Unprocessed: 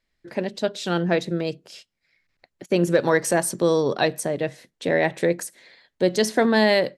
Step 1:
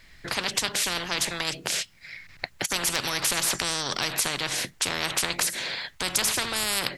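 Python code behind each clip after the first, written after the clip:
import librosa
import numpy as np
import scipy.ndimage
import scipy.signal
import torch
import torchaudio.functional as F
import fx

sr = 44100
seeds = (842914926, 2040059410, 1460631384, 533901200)

y = fx.graphic_eq(x, sr, hz=(125, 250, 500, 2000), db=(4, -4, -6, 3))
y = fx.spectral_comp(y, sr, ratio=10.0)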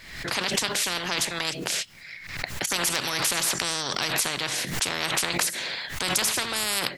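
y = fx.low_shelf(x, sr, hz=65.0, db=-10.5)
y = fx.pre_swell(y, sr, db_per_s=66.0)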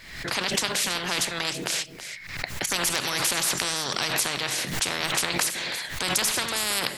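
y = x + 10.0 ** (-12.0 / 20.0) * np.pad(x, (int(328 * sr / 1000.0), 0))[:len(x)]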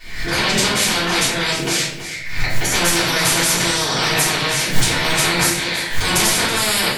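y = fx.room_shoebox(x, sr, seeds[0], volume_m3=100.0, walls='mixed', distance_m=3.4)
y = y * 10.0 ** (-3.0 / 20.0)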